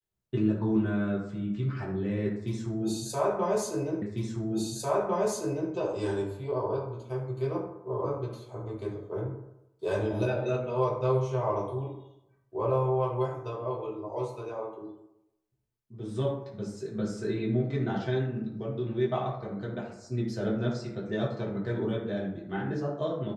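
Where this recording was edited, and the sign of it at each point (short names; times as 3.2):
4.02 repeat of the last 1.7 s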